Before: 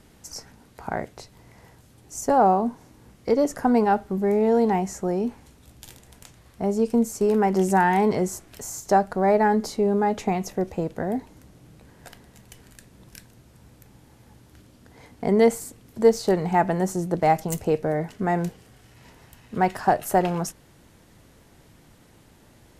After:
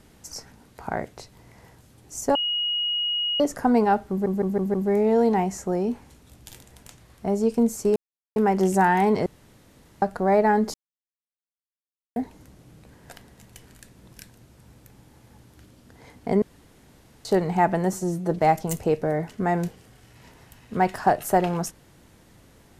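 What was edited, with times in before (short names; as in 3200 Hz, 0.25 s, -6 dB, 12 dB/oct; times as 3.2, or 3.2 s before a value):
2.35–3.4 bleep 2890 Hz -22.5 dBFS
4.1 stutter 0.16 s, 5 plays
7.32 insert silence 0.40 s
8.22–8.98 room tone
9.7–11.12 mute
15.38–16.21 room tone
16.89–17.19 stretch 1.5×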